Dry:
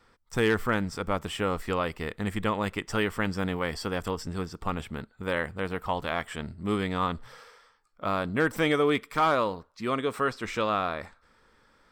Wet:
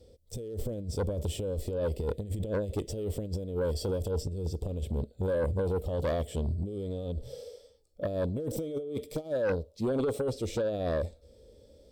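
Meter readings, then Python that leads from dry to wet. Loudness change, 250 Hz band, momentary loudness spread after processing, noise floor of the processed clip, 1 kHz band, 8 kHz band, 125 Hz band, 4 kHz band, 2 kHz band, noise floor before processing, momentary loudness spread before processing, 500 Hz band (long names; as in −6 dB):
−4.0 dB, −5.0 dB, 7 LU, −60 dBFS, −15.5 dB, −1.0 dB, +2.0 dB, −10.0 dB, −16.0 dB, −64 dBFS, 10 LU, −1.0 dB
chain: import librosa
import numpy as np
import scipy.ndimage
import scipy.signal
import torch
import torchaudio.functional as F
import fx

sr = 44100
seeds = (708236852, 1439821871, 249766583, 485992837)

y = fx.peak_eq(x, sr, hz=70.0, db=13.5, octaves=1.5)
y = fx.hpss(y, sr, part='percussive', gain_db=-8)
y = fx.over_compress(y, sr, threshold_db=-31.0, ratio=-0.5)
y = fx.curve_eq(y, sr, hz=(200.0, 570.0, 1000.0, 1500.0, 3500.0, 11000.0), db=(0, 12, -23, -27, -1, 4))
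y = fx.cheby_harmonics(y, sr, harmonics=(5,), levels_db=(-11,), full_scale_db=-13.5)
y = y * 10.0 ** (-7.5 / 20.0)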